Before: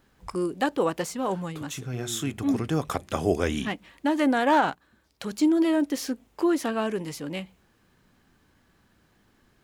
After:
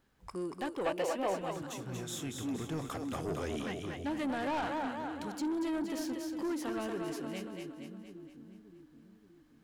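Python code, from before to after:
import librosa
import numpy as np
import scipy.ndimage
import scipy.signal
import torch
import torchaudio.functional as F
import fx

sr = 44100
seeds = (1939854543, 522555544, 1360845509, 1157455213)

p1 = x + fx.echo_split(x, sr, split_hz=330.0, low_ms=573, high_ms=234, feedback_pct=52, wet_db=-5.0, dry=0)
p2 = 10.0 ** (-21.0 / 20.0) * np.tanh(p1 / 10.0 ** (-21.0 / 20.0))
p3 = fx.graphic_eq_15(p2, sr, hz=(160, 630, 2500), db=(-6, 11, 9), at=(0.86, 1.51))
y = p3 * librosa.db_to_amplitude(-9.0)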